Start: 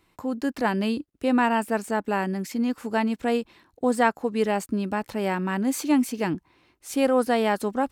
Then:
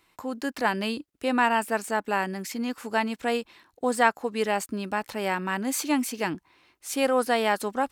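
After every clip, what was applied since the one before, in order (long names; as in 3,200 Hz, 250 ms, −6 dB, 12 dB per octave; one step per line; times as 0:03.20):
low-shelf EQ 500 Hz −10.5 dB
level +3 dB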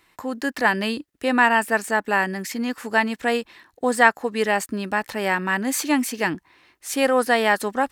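parametric band 1,800 Hz +7.5 dB 0.24 octaves
level +4 dB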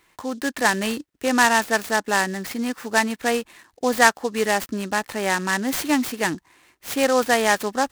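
short delay modulated by noise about 5,100 Hz, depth 0.037 ms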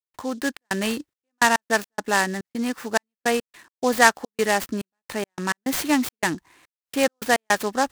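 gate pattern ".xxx.xxx..x.x" 106 BPM −60 dB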